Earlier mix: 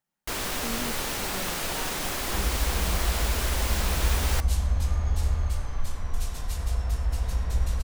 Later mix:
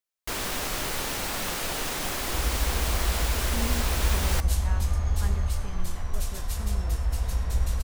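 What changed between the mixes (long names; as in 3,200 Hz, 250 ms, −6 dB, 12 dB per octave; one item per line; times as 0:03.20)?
speech: entry +2.90 s
second sound: add high-shelf EQ 9,500 Hz +7 dB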